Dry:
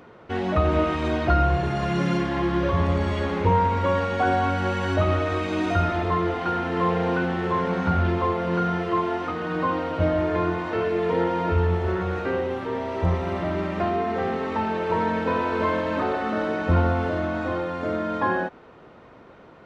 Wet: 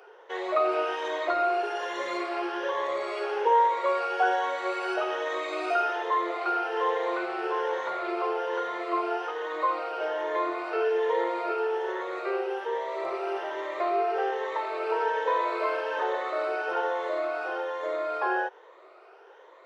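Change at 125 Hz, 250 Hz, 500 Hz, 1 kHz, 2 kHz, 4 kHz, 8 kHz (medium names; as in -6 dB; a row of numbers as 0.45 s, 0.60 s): under -40 dB, -13.0 dB, -3.0 dB, -1.5 dB, -2.5 dB, -3.0 dB, no reading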